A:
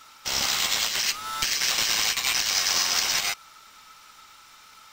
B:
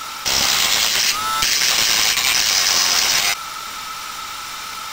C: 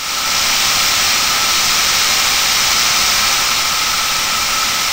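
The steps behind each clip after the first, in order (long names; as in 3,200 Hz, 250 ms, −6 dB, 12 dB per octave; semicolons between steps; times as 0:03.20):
envelope flattener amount 50%; level +6.5 dB
compressor on every frequency bin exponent 0.2; dense smooth reverb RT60 3.1 s, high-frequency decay 0.85×, DRR −7.5 dB; level −11 dB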